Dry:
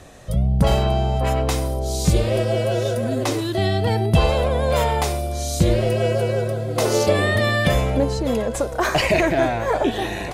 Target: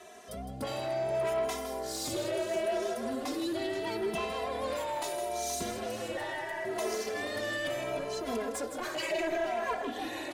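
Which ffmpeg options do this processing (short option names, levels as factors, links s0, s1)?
-filter_complex "[0:a]highpass=250,bandreject=f=50:t=h:w=6,bandreject=f=100:t=h:w=6,bandreject=f=150:t=h:w=6,bandreject=f=200:t=h:w=6,bandreject=f=250:t=h:w=6,bandreject=f=300:t=h:w=6,bandreject=f=350:t=h:w=6,aecho=1:1:3:0.62,alimiter=limit=0.178:level=0:latency=1:release=350,asoftclip=type=tanh:threshold=0.075,asettb=1/sr,asplit=3[s0][s1][s2];[s0]atrim=end=6.174[s3];[s1]atrim=start=6.17:end=6.65,asetpts=PTS-STARTPTS,afade=t=in:d=0.004:c=qsin,afade=t=out:st=0.476:d=0.004:c=qsin,aeval=exprs='val(0)*sin(2*PI*1300*n/s)':c=same[s4];[s2]atrim=start=6.646[s5];[s3][s4]acrossfade=d=0.004:c1=hsin:c2=qsin[s6];[s6][s5]acrossfade=d=0.004:c1=qsin:c2=hsin,aecho=1:1:160|477:0.335|0.237,asplit=2[s7][s8];[s8]adelay=2.6,afreqshift=0.74[s9];[s7][s9]amix=inputs=2:normalize=1,volume=0.668"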